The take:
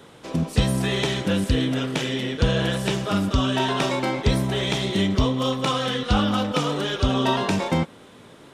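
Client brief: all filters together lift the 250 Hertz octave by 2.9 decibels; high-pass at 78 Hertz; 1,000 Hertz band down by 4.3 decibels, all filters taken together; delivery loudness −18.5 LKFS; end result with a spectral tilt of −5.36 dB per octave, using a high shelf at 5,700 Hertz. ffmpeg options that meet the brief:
ffmpeg -i in.wav -af "highpass=78,equalizer=frequency=250:width_type=o:gain=4,equalizer=frequency=1000:width_type=o:gain=-5.5,highshelf=frequency=5700:gain=-6,volume=4dB" out.wav

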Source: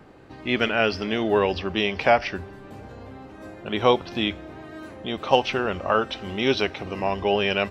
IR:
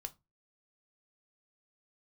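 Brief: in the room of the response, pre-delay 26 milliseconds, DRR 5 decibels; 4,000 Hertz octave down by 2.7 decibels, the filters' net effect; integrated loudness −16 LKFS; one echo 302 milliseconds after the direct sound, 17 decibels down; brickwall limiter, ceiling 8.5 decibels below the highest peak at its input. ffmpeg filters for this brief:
-filter_complex "[0:a]equalizer=frequency=4000:width_type=o:gain=-4,alimiter=limit=-12.5dB:level=0:latency=1,aecho=1:1:302:0.141,asplit=2[link_01][link_02];[1:a]atrim=start_sample=2205,adelay=26[link_03];[link_02][link_03]afir=irnorm=-1:irlink=0,volume=-1.5dB[link_04];[link_01][link_04]amix=inputs=2:normalize=0,volume=9.5dB"

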